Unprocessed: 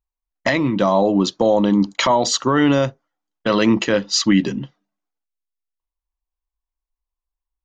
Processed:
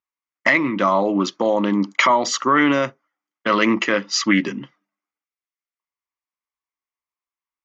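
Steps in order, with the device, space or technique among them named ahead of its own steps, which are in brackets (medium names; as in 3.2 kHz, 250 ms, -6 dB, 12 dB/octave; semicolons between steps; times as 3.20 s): full-range speaker at full volume (loudspeaker Doppler distortion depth 0.11 ms; cabinet simulation 240–6600 Hz, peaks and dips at 470 Hz -5 dB, 730 Hz -5 dB, 1.2 kHz +7 dB, 2.1 kHz +9 dB, 4 kHz -8 dB)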